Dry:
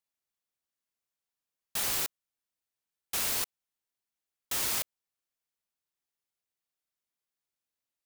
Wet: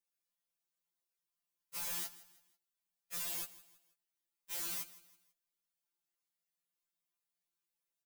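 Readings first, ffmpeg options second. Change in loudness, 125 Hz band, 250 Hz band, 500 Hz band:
-9.0 dB, -11.0 dB, -10.0 dB, -12.5 dB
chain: -af "highshelf=f=9.1k:g=5.5,asoftclip=type=tanh:threshold=-33.5dB,flanger=delay=3.9:depth=3.2:regen=-61:speed=0.29:shape=sinusoidal,aecho=1:1:163|326|489:0.126|0.0466|0.0172,afftfilt=real='re*2.83*eq(mod(b,8),0)':imag='im*2.83*eq(mod(b,8),0)':win_size=2048:overlap=0.75,volume=2.5dB"

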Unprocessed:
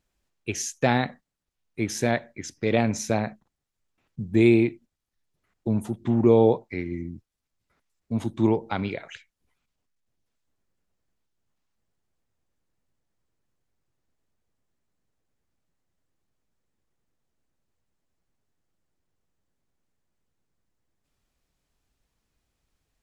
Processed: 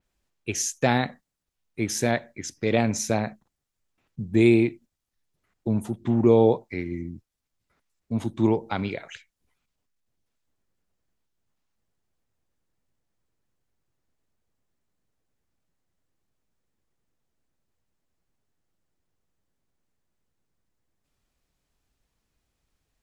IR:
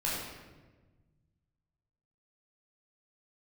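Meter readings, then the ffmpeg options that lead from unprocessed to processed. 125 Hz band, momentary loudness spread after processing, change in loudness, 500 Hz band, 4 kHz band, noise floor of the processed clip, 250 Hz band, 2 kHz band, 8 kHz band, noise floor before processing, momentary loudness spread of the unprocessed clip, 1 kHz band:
0.0 dB, 16 LU, 0.0 dB, 0.0 dB, +1.5 dB, -82 dBFS, 0.0 dB, 0.0 dB, n/a, -82 dBFS, 16 LU, 0.0 dB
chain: -af "adynamicequalizer=threshold=0.00708:dfrequency=4900:dqfactor=0.7:tfrequency=4900:tqfactor=0.7:attack=5:release=100:ratio=0.375:range=2.5:mode=boostabove:tftype=highshelf"

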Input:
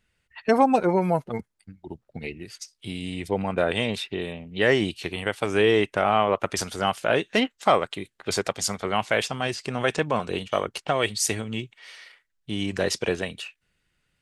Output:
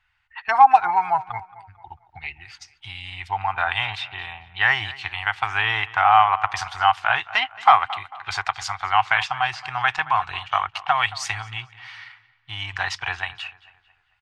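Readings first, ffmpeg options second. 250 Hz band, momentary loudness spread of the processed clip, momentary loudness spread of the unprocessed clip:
under -20 dB, 19 LU, 16 LU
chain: -filter_complex "[0:a]firequalizer=gain_entry='entry(110,0);entry(200,-27);entry(330,-21);entry(540,-26);entry(760,11);entry(10000,-17)':delay=0.05:min_phase=1,asplit=2[a][b];[b]adelay=223,lowpass=f=3.6k:p=1,volume=-18dB,asplit=2[c][d];[d]adelay=223,lowpass=f=3.6k:p=1,volume=0.43,asplit=2[e][f];[f]adelay=223,lowpass=f=3.6k:p=1,volume=0.43,asplit=2[g][h];[h]adelay=223,lowpass=f=3.6k:p=1,volume=0.43[i];[a][c][e][g][i]amix=inputs=5:normalize=0,volume=-1dB"

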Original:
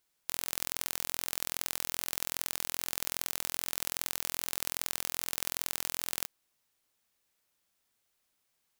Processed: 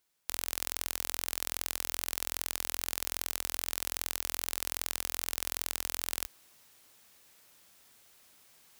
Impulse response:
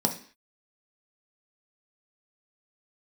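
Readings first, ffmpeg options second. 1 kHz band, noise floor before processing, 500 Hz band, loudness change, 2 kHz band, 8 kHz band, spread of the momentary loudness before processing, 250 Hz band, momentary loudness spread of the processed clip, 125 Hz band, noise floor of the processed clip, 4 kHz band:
0.0 dB, -78 dBFS, 0.0 dB, 0.0 dB, 0.0 dB, 0.0 dB, 1 LU, 0.0 dB, 1 LU, 0.0 dB, -67 dBFS, 0.0 dB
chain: -af "highpass=42,areverse,acompressor=mode=upward:threshold=-46dB:ratio=2.5,areverse"

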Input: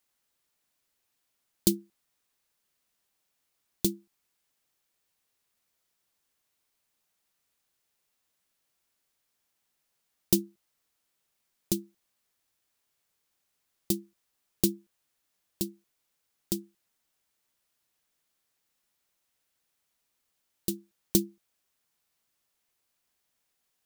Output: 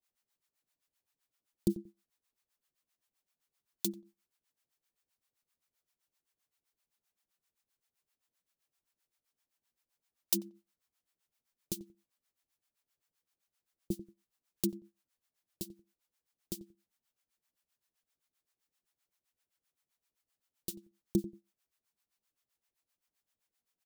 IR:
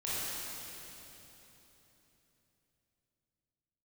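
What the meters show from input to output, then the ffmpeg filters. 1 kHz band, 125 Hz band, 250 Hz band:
-8.5 dB, -6.5 dB, -6.5 dB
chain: -filter_complex "[0:a]acrossover=split=620[a][b];[a]aeval=exprs='val(0)*(1-1/2+1/2*cos(2*PI*7.7*n/s))':c=same[c];[b]aeval=exprs='val(0)*(1-1/2-1/2*cos(2*PI*7.7*n/s))':c=same[d];[c][d]amix=inputs=2:normalize=0,asplit=2[e][f];[f]adelay=91,lowpass=f=890:p=1,volume=-15dB,asplit=2[g][h];[h]adelay=91,lowpass=f=890:p=1,volume=0.22[i];[e][g][i]amix=inputs=3:normalize=0,volume=-3dB"

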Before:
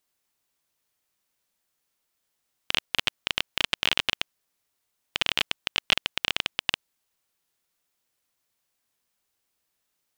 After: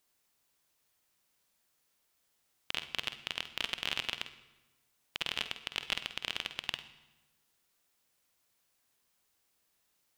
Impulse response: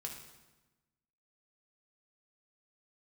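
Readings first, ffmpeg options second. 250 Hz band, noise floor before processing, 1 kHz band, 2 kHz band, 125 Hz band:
-9.5 dB, -79 dBFS, -9.5 dB, -9.5 dB, -9.0 dB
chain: -filter_complex "[0:a]alimiter=limit=-16dB:level=0:latency=1:release=435,asplit=2[a][b];[1:a]atrim=start_sample=2205,adelay=49[c];[b][c]afir=irnorm=-1:irlink=0,volume=-7dB[d];[a][d]amix=inputs=2:normalize=0,volume=1.5dB"

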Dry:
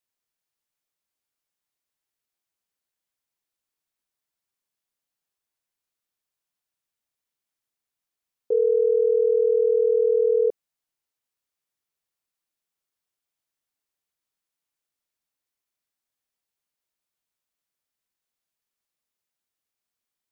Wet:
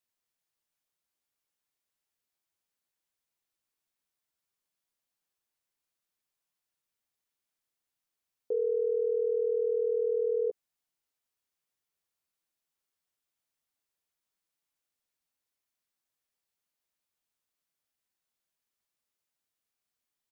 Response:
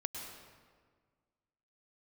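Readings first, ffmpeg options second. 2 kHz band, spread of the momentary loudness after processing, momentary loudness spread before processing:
n/a, 3 LU, 3 LU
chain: -filter_complex "[0:a]alimiter=limit=-22dB:level=0:latency=1:release=44,asplit=2[a][b];[b]adelay=12,volume=-11dB[c];[a][c]amix=inputs=2:normalize=0,volume=-1.5dB"

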